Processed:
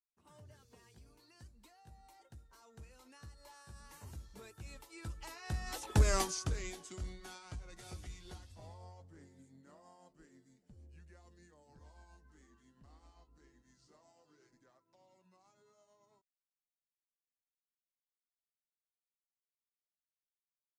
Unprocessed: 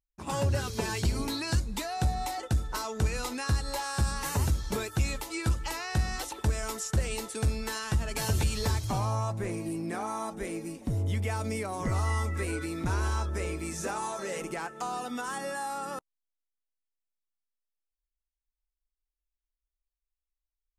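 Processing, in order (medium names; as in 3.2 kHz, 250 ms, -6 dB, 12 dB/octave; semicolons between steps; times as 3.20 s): pitch bend over the whole clip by -5 st starting unshifted; Doppler pass-by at 6.11 s, 26 m/s, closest 2.9 m; trim +4.5 dB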